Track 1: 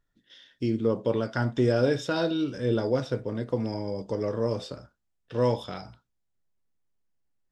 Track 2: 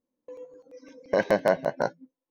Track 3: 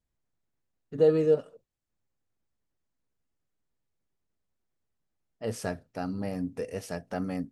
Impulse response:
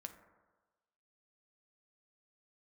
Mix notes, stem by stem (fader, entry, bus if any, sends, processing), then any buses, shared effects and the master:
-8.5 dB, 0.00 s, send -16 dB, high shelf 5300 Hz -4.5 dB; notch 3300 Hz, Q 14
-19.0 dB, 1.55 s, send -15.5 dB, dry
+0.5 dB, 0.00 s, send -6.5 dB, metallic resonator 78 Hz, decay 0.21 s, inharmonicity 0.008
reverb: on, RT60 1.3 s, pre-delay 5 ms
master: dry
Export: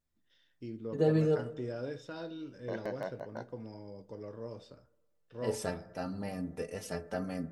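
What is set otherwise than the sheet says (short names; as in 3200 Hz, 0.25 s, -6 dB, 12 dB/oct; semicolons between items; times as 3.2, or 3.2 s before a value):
stem 1 -8.5 dB -> -17.5 dB; reverb return +10.0 dB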